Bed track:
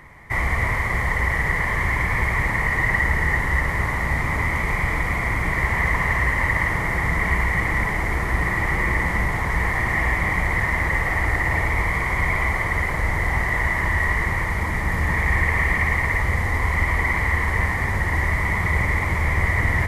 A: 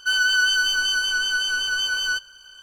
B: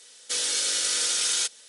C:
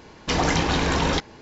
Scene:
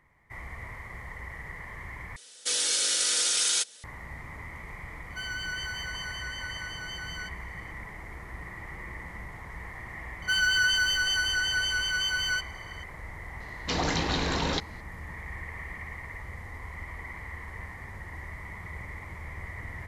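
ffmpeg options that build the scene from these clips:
ffmpeg -i bed.wav -i cue0.wav -i cue1.wav -i cue2.wav -filter_complex "[1:a]asplit=2[link_01][link_02];[0:a]volume=-19.5dB[link_03];[3:a]equalizer=frequency=4100:width=4.2:gain=7[link_04];[link_03]asplit=2[link_05][link_06];[link_05]atrim=end=2.164[link_07];[2:a]atrim=end=1.68,asetpts=PTS-STARTPTS,volume=-0.5dB[link_08];[link_06]atrim=start=3.836[link_09];[link_01]atrim=end=2.62,asetpts=PTS-STARTPTS,volume=-16.5dB,afade=type=in:duration=0.004:curve=hsin,afade=type=out:start_time=2.616:duration=0.004:curve=hsin,adelay=5100[link_10];[link_02]atrim=end=2.62,asetpts=PTS-STARTPTS,volume=-5dB,afade=type=in:duration=0.004:curve=hsin,afade=type=out:start_time=2.616:duration=0.004:curve=hsin,adelay=10220[link_11];[link_04]atrim=end=1.41,asetpts=PTS-STARTPTS,volume=-7dB,afade=type=in:duration=0.004:curve=hsin,afade=type=out:start_time=1.406:duration=0.004:curve=hsin,adelay=13400[link_12];[link_07][link_08]acrossfade=duration=0.004:curve1=hsin:curve2=hsin[link_13];[link_13][link_09]acrossfade=duration=0.004:curve1=hsin:curve2=hsin[link_14];[link_14][link_10][link_11][link_12]amix=inputs=4:normalize=0" out.wav

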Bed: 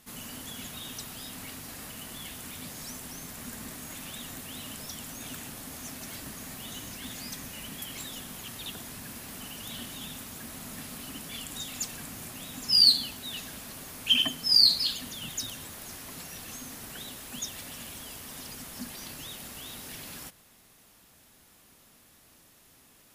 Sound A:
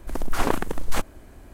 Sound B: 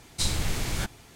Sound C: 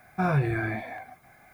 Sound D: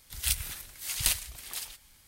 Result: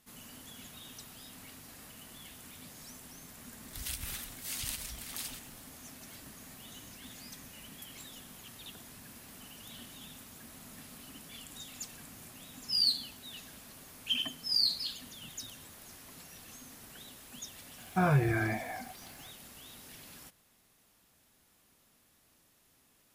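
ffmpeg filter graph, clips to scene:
ffmpeg -i bed.wav -i cue0.wav -i cue1.wav -i cue2.wav -i cue3.wav -filter_complex "[0:a]volume=-9dB[link_01];[4:a]acompressor=threshold=-33dB:ratio=6:attack=3.2:release=140:knee=1:detection=peak,atrim=end=2.07,asetpts=PTS-STARTPTS,volume=-1dB,afade=type=in:duration=0.004:curve=hsin,afade=type=out:start_time=2.066:duration=0.004:curve=hsin,adelay=3630[link_02];[3:a]atrim=end=1.53,asetpts=PTS-STARTPTS,volume=-2dB,afade=type=in:duration=0.004:curve=hsin,afade=type=out:start_time=1.526:duration=0.004:curve=hsin,adelay=17780[link_03];[link_01][link_02][link_03]amix=inputs=3:normalize=0" out.wav

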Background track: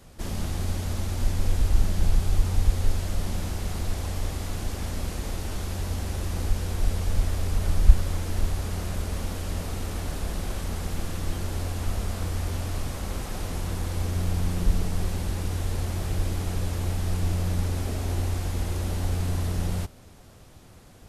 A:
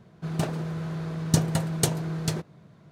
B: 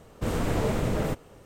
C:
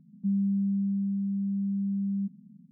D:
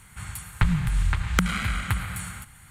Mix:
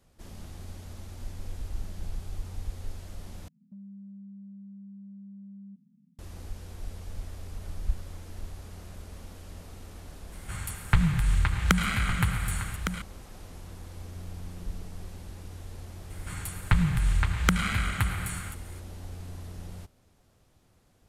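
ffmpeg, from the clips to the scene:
ffmpeg -i bed.wav -i cue0.wav -i cue1.wav -i cue2.wav -i cue3.wav -filter_complex "[4:a]asplit=2[link_01][link_02];[0:a]volume=-14dB[link_03];[3:a]acompressor=threshold=-33dB:ratio=6:attack=3.2:release=140:knee=1:detection=peak[link_04];[link_01]aecho=1:1:1160:0.355[link_05];[link_03]asplit=2[link_06][link_07];[link_06]atrim=end=3.484[link_08];[link_04]atrim=end=2.71,asetpts=PTS-STARTPTS,volume=-11dB[link_09];[link_07]atrim=start=6.186[link_10];[link_05]atrim=end=2.7,asetpts=PTS-STARTPTS,volume=-0.5dB,afade=type=in:duration=0.004:curve=hsin,afade=type=out:start_time=2.696:duration=0.004:curve=hsin,adelay=10320[link_11];[link_02]atrim=end=2.7,asetpts=PTS-STARTPTS,volume=-1dB,afade=type=in:duration=0.004:curve=hsin,afade=type=out:start_time=2.696:duration=0.004:curve=hsin,adelay=16100[link_12];[link_08][link_09]acrossfade=duration=0.004:curve1=hsin:curve2=hsin[link_13];[link_13][link_10]acrossfade=duration=0.004:curve1=hsin:curve2=hsin[link_14];[link_14][link_11][link_12]amix=inputs=3:normalize=0" out.wav

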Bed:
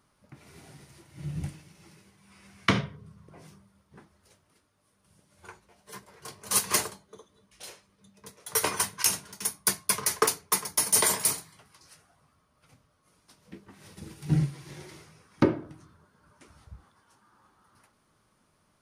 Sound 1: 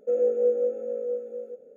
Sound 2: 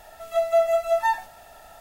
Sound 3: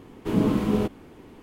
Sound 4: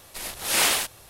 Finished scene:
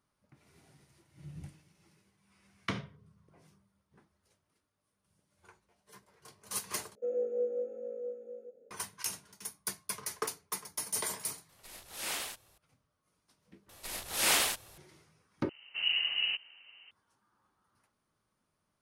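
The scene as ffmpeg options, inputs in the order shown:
ffmpeg -i bed.wav -i cue0.wav -i cue1.wav -i cue2.wav -i cue3.wav -filter_complex "[4:a]asplit=2[link_01][link_02];[0:a]volume=-12dB[link_03];[3:a]lowpass=frequency=2600:width_type=q:width=0.5098,lowpass=frequency=2600:width_type=q:width=0.6013,lowpass=frequency=2600:width_type=q:width=0.9,lowpass=frequency=2600:width_type=q:width=2.563,afreqshift=-3100[link_04];[link_03]asplit=4[link_05][link_06][link_07][link_08];[link_05]atrim=end=6.954[link_09];[1:a]atrim=end=1.76,asetpts=PTS-STARTPTS,volume=-10dB[link_10];[link_06]atrim=start=8.706:end=13.694[link_11];[link_02]atrim=end=1.09,asetpts=PTS-STARTPTS,volume=-6dB[link_12];[link_07]atrim=start=14.776:end=15.494[link_13];[link_04]atrim=end=1.42,asetpts=PTS-STARTPTS,volume=-9.5dB[link_14];[link_08]atrim=start=16.906[link_15];[link_01]atrim=end=1.09,asetpts=PTS-STARTPTS,volume=-16dB,afade=type=in:duration=0.004:curve=hsin,afade=type=out:start_time=1.086:duration=0.004:curve=hsin,adelay=11490[link_16];[link_09][link_10]acrossfade=duration=0.004:curve1=hsin:curve2=hsin[link_17];[link_17][link_11]acrossfade=duration=0.004:curve1=hsin:curve2=hsin[link_18];[link_18][link_12]acrossfade=duration=0.004:curve1=hsin:curve2=hsin[link_19];[link_19][link_13]acrossfade=duration=0.004:curve1=hsin:curve2=hsin[link_20];[link_20][link_14]acrossfade=duration=0.004:curve1=hsin:curve2=hsin[link_21];[link_21][link_15]acrossfade=duration=0.004:curve1=hsin:curve2=hsin[link_22];[link_22][link_16]amix=inputs=2:normalize=0" out.wav

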